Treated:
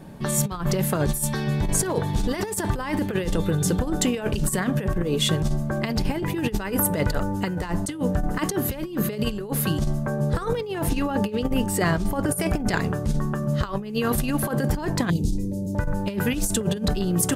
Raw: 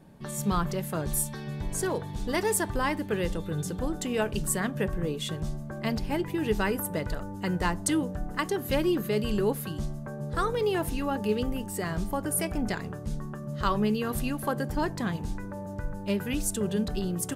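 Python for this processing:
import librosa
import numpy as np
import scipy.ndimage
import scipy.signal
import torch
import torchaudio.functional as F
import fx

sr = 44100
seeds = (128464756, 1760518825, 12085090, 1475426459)

y = fx.cheby1_bandstop(x, sr, low_hz=360.0, high_hz=4600.0, order=2, at=(15.1, 15.75))
y = fx.over_compress(y, sr, threshold_db=-31.0, ratio=-0.5)
y = fx.high_shelf(y, sr, hz=8500.0, db=-5.0, at=(10.57, 12.4))
y = F.gain(torch.from_numpy(y), 8.5).numpy()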